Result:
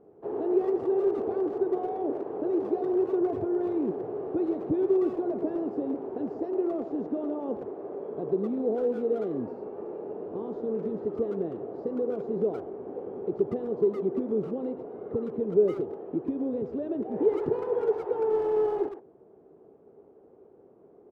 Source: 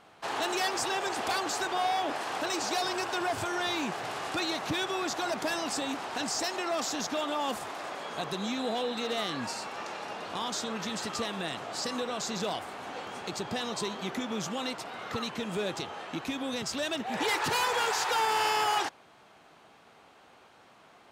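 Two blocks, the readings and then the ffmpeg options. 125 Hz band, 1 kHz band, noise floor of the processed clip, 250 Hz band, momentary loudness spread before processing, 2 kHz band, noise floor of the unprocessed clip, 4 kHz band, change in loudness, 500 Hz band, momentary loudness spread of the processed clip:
+1.5 dB, −9.5 dB, −56 dBFS, +7.0 dB, 10 LU, below −20 dB, −57 dBFS, below −30 dB, +2.0 dB, +9.0 dB, 10 LU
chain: -filter_complex "[0:a]lowpass=frequency=410:width_type=q:width=4.9,asplit=2[link_01][link_02];[link_02]adelay=110,highpass=300,lowpass=3400,asoftclip=type=hard:threshold=-26dB,volume=-9dB[link_03];[link_01][link_03]amix=inputs=2:normalize=0"

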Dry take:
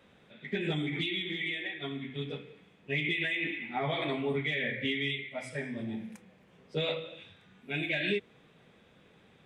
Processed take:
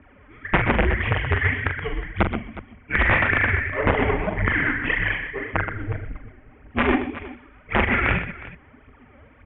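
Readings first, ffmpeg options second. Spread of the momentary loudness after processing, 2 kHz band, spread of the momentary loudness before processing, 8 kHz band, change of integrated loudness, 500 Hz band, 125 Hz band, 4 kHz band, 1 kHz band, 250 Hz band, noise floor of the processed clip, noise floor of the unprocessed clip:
17 LU, +12.5 dB, 10 LU, below −20 dB, +10.5 dB, +8.5 dB, +13.5 dB, −0.5 dB, +16.0 dB, +9.0 dB, −52 dBFS, −62 dBFS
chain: -af "lowshelf=frequency=350:gain=3.5,aecho=1:1:6:0.98,aphaser=in_gain=1:out_gain=1:delay=4:decay=0.75:speed=1.8:type=triangular,aeval=exprs='0.531*(cos(1*acos(clip(val(0)/0.531,-1,1)))-cos(1*PI/2))+0.00335*(cos(2*acos(clip(val(0)/0.531,-1,1)))-cos(2*PI/2))+0.106*(cos(6*acos(clip(val(0)/0.531,-1,1)))-cos(6*PI/2))+0.00841*(cos(7*acos(clip(val(0)/0.531,-1,1)))-cos(7*PI/2))':channel_layout=same,aresample=8000,aeval=exprs='(mod(3.35*val(0)+1,2)-1)/3.35':channel_layout=same,aresample=44100,aecho=1:1:42|125|363:0.398|0.299|0.141,highpass=frequency=170:width_type=q:width=0.5412,highpass=frequency=170:width_type=q:width=1.307,lowpass=frequency=2600:width_type=q:width=0.5176,lowpass=frequency=2600:width_type=q:width=0.7071,lowpass=frequency=2600:width_type=q:width=1.932,afreqshift=-240,alimiter=level_in=10dB:limit=-1dB:release=50:level=0:latency=1,volume=-5dB"

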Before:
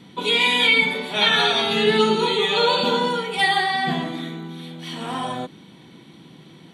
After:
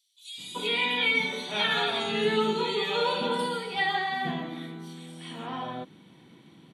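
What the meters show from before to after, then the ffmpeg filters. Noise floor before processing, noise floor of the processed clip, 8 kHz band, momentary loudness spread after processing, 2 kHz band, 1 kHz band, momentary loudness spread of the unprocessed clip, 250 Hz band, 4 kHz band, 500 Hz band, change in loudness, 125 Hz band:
−47 dBFS, −55 dBFS, −8.5 dB, 17 LU, −8.0 dB, −7.5 dB, 17 LU, −7.5 dB, −9.5 dB, −7.5 dB, −8.5 dB, −7.5 dB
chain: -filter_complex "[0:a]acrossover=split=4500[link_01][link_02];[link_01]adelay=380[link_03];[link_03][link_02]amix=inputs=2:normalize=0,volume=-7.5dB"

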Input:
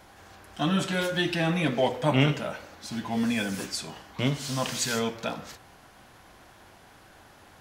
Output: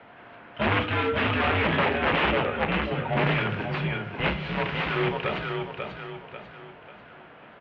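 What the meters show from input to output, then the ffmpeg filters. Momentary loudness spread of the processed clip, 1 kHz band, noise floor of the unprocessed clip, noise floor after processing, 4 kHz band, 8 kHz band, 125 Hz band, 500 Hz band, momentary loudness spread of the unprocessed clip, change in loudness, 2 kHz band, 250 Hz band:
17 LU, +6.0 dB, −54 dBFS, −49 dBFS, 0.0 dB, below −30 dB, +1.0 dB, +3.0 dB, 13 LU, +2.0 dB, +6.5 dB, −2.0 dB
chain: -filter_complex "[0:a]aeval=exprs='0.376*(cos(1*acos(clip(val(0)/0.376,-1,1)))-cos(1*PI/2))+0.0531*(cos(4*acos(clip(val(0)/0.376,-1,1)))-cos(4*PI/2))+0.00299*(cos(5*acos(clip(val(0)/0.376,-1,1)))-cos(5*PI/2))+0.0211*(cos(7*acos(clip(val(0)/0.376,-1,1)))-cos(7*PI/2))':channel_layout=same,aemphasis=mode=production:type=50kf,asplit=2[link_01][link_02];[link_02]aecho=0:1:542|1084|1626|2168|2710:0.447|0.179|0.0715|0.0286|0.0114[link_03];[link_01][link_03]amix=inputs=2:normalize=0,aeval=exprs='(mod(11.2*val(0)+1,2)-1)/11.2':channel_layout=same,asplit=2[link_04][link_05];[link_05]adelay=33,volume=-12.5dB[link_06];[link_04][link_06]amix=inputs=2:normalize=0,highpass=frequency=190:width_type=q:width=0.5412,highpass=frequency=190:width_type=q:width=1.307,lowpass=frequency=2900:width_type=q:width=0.5176,lowpass=frequency=2900:width_type=q:width=0.7071,lowpass=frequency=2900:width_type=q:width=1.932,afreqshift=-85,volume=7.5dB"

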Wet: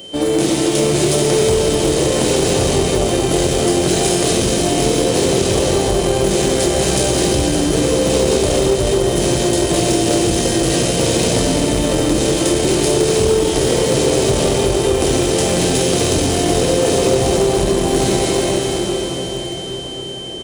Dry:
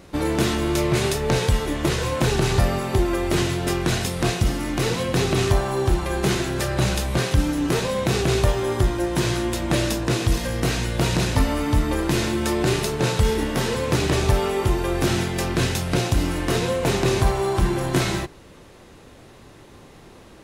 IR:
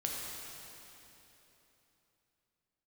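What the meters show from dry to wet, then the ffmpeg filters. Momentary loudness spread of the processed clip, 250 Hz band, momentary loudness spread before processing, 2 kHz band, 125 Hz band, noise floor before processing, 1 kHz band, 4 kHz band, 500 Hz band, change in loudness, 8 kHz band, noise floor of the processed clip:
2 LU, +7.0 dB, 3 LU, +2.5 dB, +2.0 dB, −47 dBFS, +5.0 dB, +9.0 dB, +10.0 dB, +7.0 dB, +12.5 dB, −25 dBFS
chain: -filter_complex "[0:a]aeval=exprs='val(0)+0.0141*sin(2*PI*3100*n/s)':channel_layout=same,lowshelf=frequency=780:width_type=q:width=1.5:gain=11[link_01];[1:a]atrim=start_sample=2205,asetrate=24696,aresample=44100[link_02];[link_01][link_02]afir=irnorm=-1:irlink=0,aresample=22050,aresample=44100,acrossover=split=150[link_03][link_04];[link_04]acompressor=threshold=-4dB:ratio=4[link_05];[link_03][link_05]amix=inputs=2:normalize=0,asplit=2[link_06][link_07];[link_07]aeval=exprs='clip(val(0),-1,0.316)':channel_layout=same,volume=-4dB[link_08];[link_06][link_08]amix=inputs=2:normalize=0,aemphasis=mode=production:type=riaa,volume=-7.5dB"

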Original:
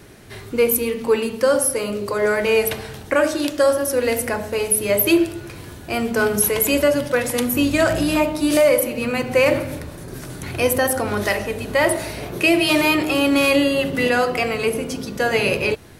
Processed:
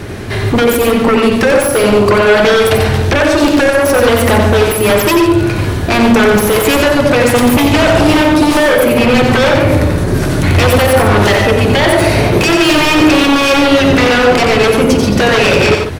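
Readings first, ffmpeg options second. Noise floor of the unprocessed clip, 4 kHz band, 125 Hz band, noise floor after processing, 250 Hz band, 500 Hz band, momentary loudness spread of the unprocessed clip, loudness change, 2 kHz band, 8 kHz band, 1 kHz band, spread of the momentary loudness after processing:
−38 dBFS, +11.0 dB, +17.5 dB, −15 dBFS, +11.0 dB, +9.0 dB, 11 LU, +9.5 dB, +10.0 dB, +3.5 dB, +12.5 dB, 3 LU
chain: -filter_complex "[0:a]acompressor=threshold=-20dB:ratio=5,equalizer=frequency=92:width_type=o:width=0.26:gain=7,aeval=exprs='0.316*sin(PI/2*3.98*val(0)/0.316)':channel_layout=same,lowpass=frequency=3400:poles=1,asplit=2[link_01][link_02];[link_02]aecho=0:1:90.38|145.8:0.562|0.316[link_03];[link_01][link_03]amix=inputs=2:normalize=0,volume=3.5dB"

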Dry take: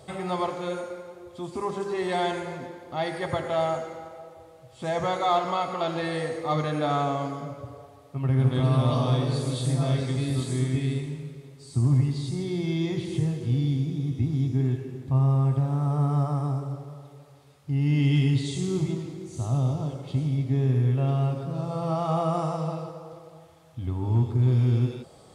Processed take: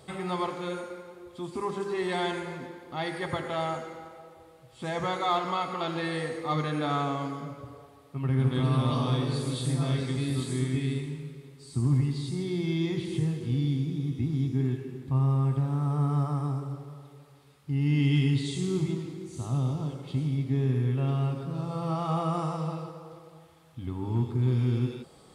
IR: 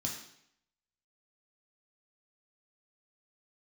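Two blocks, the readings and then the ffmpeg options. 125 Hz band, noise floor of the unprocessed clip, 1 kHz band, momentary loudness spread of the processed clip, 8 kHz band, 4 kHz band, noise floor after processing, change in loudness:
−3.5 dB, −51 dBFS, −3.0 dB, 14 LU, −2.0 dB, −0.5 dB, −54 dBFS, −3.0 dB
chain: -af "equalizer=frequency=100:width_type=o:width=0.67:gain=-8,equalizer=frequency=630:width_type=o:width=0.67:gain=-8,equalizer=frequency=6300:width_type=o:width=0.67:gain=-4"

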